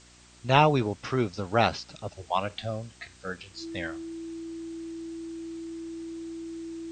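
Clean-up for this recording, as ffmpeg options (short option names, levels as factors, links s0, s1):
-af "bandreject=f=60.3:t=h:w=4,bandreject=f=120.6:t=h:w=4,bandreject=f=180.9:t=h:w=4,bandreject=f=241.2:t=h:w=4,bandreject=f=301.5:t=h:w=4,bandreject=f=361.8:t=h:w=4,bandreject=f=330:w=30,afwtdn=0.0022"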